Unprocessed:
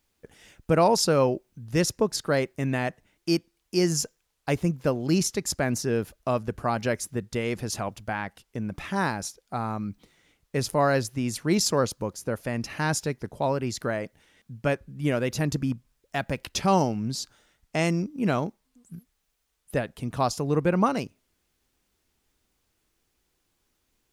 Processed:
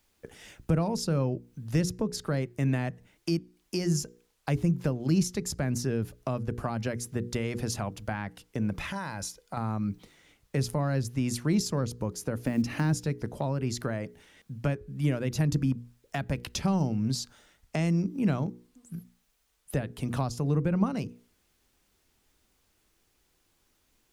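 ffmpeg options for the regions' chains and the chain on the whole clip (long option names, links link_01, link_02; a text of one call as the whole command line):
ffmpeg -i in.wav -filter_complex "[0:a]asettb=1/sr,asplit=3[link_01][link_02][link_03];[link_01]atrim=end=8.784[link_04];[link_02]atrim=start=8.78:end=9.57,asetpts=PTS-STARTPTS,afade=type=in:duration=0.004:curve=qsin,afade=type=out:start_time=0.786:duration=0.004:curve=qsin,aecho=1:1:2:0.34,atrim=end_sample=34839,acompressor=threshold=-34dB:ratio=3:attack=3.2:release=140:knee=1:detection=peak,equalizer=frequency=410:width=3.5:gain=-10[link_05];[link_03]atrim=start=9.566[link_06];[link_04][link_05]acrossfade=duration=0.004:curve1=hsin:curve2=qsin[link_07];[link_07][link_06]acrossfade=duration=0.004:curve1=qsin:curve2=hsin,asettb=1/sr,asplit=3[link_08][link_09][link_10];[link_08]atrim=end=12.354[link_11];[link_09]atrim=start=12.35:end=12.93,asetpts=PTS-STARTPTS,afade=type=in:duration=0.004:curve=qsin,afade=type=out:start_time=0.576:duration=0.004:curve=qsin,equalizer=frequency=270:width_type=o:width=0.64:gain=11.5,acrusher=bits=8:mode=log:mix=0:aa=0.000001[link_12];[link_10]atrim=start=12.926[link_13];[link_11][link_12]acrossfade=duration=0.004:curve1=hsin:curve2=qsin[link_14];[link_14][link_13]acrossfade=duration=0.004:curve1=qsin:curve2=hsin,acontrast=35,bandreject=frequency=60:width_type=h:width=6,bandreject=frequency=120:width_type=h:width=6,bandreject=frequency=180:width_type=h:width=6,bandreject=frequency=240:width_type=h:width=6,bandreject=frequency=300:width_type=h:width=6,bandreject=frequency=360:width_type=h:width=6,bandreject=frequency=420:width_type=h:width=6,bandreject=frequency=480:width_type=h:width=6,acrossover=split=220[link_15][link_16];[link_16]acompressor=threshold=-30dB:ratio=6[link_17];[link_15][link_17]amix=inputs=2:normalize=0,volume=-2dB" out.wav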